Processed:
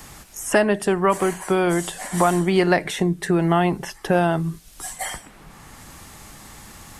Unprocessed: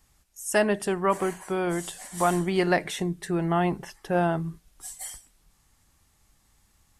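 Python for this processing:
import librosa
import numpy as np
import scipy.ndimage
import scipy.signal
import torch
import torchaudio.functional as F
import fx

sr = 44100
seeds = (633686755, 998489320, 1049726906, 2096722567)

y = fx.band_squash(x, sr, depth_pct=70)
y = y * librosa.db_to_amplitude(5.5)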